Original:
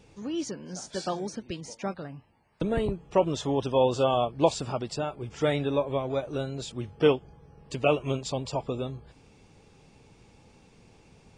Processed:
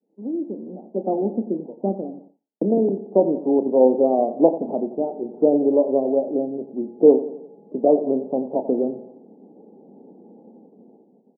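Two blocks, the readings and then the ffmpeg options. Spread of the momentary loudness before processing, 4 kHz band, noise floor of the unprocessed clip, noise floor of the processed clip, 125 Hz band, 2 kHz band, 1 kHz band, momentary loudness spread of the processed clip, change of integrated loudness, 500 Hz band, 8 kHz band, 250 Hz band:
12 LU, below −40 dB, −58 dBFS, −59 dBFS, −5.0 dB, below −40 dB, +2.5 dB, 14 LU, +8.0 dB, +8.5 dB, below −40 dB, +10.5 dB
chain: -filter_complex "[0:a]aemphasis=mode=reproduction:type=riaa,aecho=1:1:89|178|267|356|445:0.211|0.104|0.0507|0.0249|0.0122,dynaudnorm=framelen=160:gausssize=13:maxgain=9.5dB,agate=range=-33dB:threshold=-34dB:ratio=3:detection=peak,asuperpass=centerf=410:order=12:qfactor=0.67,equalizer=frequency=390:width_type=o:width=0.77:gain=2,asplit=2[link_01][link_02];[link_02]adelay=31,volume=-12dB[link_03];[link_01][link_03]amix=inputs=2:normalize=0,volume=-1dB"

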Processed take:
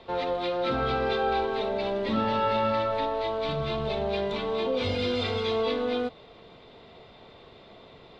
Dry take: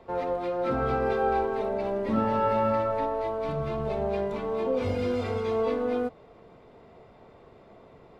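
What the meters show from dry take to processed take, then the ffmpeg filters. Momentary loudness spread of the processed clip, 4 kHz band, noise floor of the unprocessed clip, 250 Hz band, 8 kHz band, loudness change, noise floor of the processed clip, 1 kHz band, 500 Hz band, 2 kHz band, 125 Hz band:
4 LU, +14.0 dB, −54 dBFS, −1.0 dB, can't be measured, 0.0 dB, −52 dBFS, 0.0 dB, −0.5 dB, +4.0 dB, −1.0 dB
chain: -filter_complex "[0:a]aemphasis=mode=production:type=75fm,asplit=2[link_01][link_02];[link_02]alimiter=level_in=0.5dB:limit=-24dB:level=0:latency=1,volume=-0.5dB,volume=-2dB[link_03];[link_01][link_03]amix=inputs=2:normalize=0,lowpass=frequency=3700:width_type=q:width=3.5,volume=-3.5dB"

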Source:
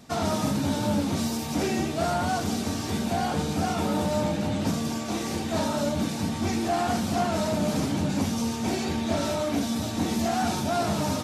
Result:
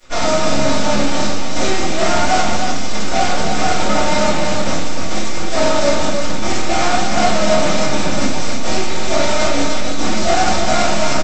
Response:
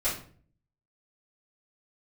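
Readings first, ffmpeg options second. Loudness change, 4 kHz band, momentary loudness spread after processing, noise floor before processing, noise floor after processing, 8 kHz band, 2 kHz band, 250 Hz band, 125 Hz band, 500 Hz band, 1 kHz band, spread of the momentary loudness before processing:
+9.5 dB, +13.0 dB, 5 LU, −31 dBFS, −12 dBFS, +12.0 dB, +14.5 dB, +4.5 dB, +3.5 dB, +11.0 dB, +11.0 dB, 3 LU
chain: -filter_complex "[0:a]highpass=frequency=330:poles=1,flanger=delay=4.5:depth=1.7:regen=88:speed=1.4:shape=triangular,aresample=16000,acrusher=bits=6:dc=4:mix=0:aa=0.000001,aresample=44100,acontrast=75,aecho=1:1:303:0.531[link_01];[1:a]atrim=start_sample=2205,atrim=end_sample=6174[link_02];[link_01][link_02]afir=irnorm=-1:irlink=0"

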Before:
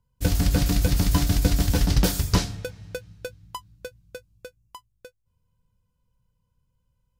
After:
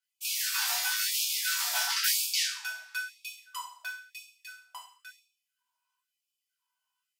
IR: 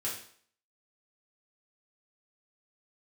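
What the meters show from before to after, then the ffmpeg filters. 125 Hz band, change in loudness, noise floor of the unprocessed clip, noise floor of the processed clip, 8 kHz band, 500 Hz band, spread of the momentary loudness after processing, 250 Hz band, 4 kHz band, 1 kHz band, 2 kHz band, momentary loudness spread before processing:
below −40 dB, −5.0 dB, −74 dBFS, below −85 dBFS, +3.0 dB, −23.0 dB, 21 LU, below −40 dB, +3.0 dB, −4.5 dB, +4.5 dB, 18 LU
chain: -filter_complex "[0:a]aphaser=in_gain=1:out_gain=1:delay=2.7:decay=0.26:speed=0.51:type=sinusoidal[link_01];[1:a]atrim=start_sample=2205[link_02];[link_01][link_02]afir=irnorm=-1:irlink=0,afftfilt=real='re*gte(b*sr/1024,610*pow(2300/610,0.5+0.5*sin(2*PI*0.99*pts/sr)))':imag='im*gte(b*sr/1024,610*pow(2300/610,0.5+0.5*sin(2*PI*0.99*pts/sr)))':win_size=1024:overlap=0.75"

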